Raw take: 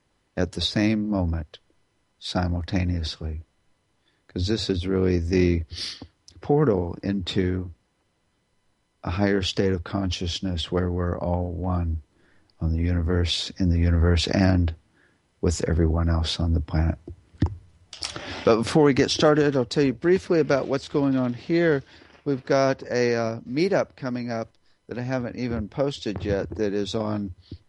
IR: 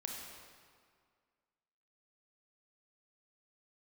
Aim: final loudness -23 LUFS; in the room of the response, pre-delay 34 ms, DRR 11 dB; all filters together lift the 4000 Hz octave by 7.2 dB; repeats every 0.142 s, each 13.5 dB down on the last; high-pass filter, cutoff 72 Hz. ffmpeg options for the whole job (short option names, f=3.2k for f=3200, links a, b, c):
-filter_complex "[0:a]highpass=72,equalizer=f=4k:t=o:g=8.5,aecho=1:1:142|284:0.211|0.0444,asplit=2[a][b];[1:a]atrim=start_sample=2205,adelay=34[c];[b][c]afir=irnorm=-1:irlink=0,volume=-10.5dB[d];[a][d]amix=inputs=2:normalize=0"